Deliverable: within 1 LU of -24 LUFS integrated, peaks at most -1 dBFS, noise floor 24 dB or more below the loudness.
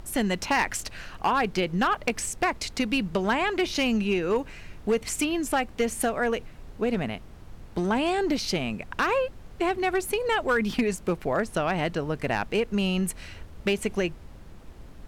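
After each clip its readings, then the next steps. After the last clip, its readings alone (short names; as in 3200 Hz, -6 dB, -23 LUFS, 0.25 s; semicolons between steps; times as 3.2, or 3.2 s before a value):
clipped 0.6%; flat tops at -17.0 dBFS; noise floor -46 dBFS; noise floor target -51 dBFS; loudness -27.0 LUFS; peak -17.0 dBFS; loudness target -24.0 LUFS
-> clip repair -17 dBFS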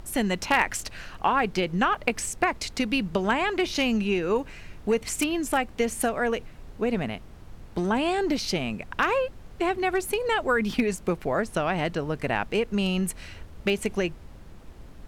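clipped 0.0%; noise floor -46 dBFS; noise floor target -51 dBFS
-> noise print and reduce 6 dB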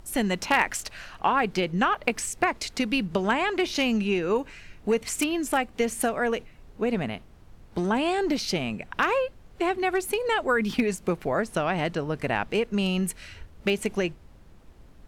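noise floor -51 dBFS; loudness -26.5 LUFS; peak -8.0 dBFS; loudness target -24.0 LUFS
-> gain +2.5 dB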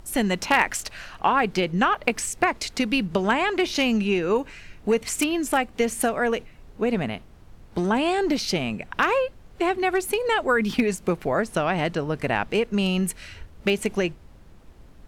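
loudness -24.0 LUFS; peak -5.5 dBFS; noise floor -49 dBFS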